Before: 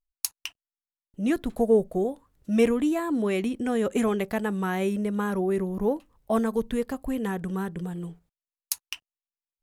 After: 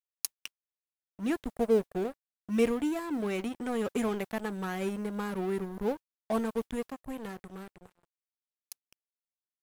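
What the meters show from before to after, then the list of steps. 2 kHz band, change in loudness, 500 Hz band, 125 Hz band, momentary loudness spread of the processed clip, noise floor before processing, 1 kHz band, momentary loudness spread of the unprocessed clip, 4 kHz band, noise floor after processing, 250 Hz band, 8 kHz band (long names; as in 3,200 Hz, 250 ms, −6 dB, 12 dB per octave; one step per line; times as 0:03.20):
−5.5 dB, −5.5 dB, −6.0 dB, −8.5 dB, 19 LU, below −85 dBFS, −5.5 dB, 12 LU, −6.0 dB, below −85 dBFS, −6.5 dB, −7.0 dB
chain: fade-out on the ending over 3.09 s
dead-zone distortion −35 dBFS
noise that follows the level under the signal 34 dB
level −4 dB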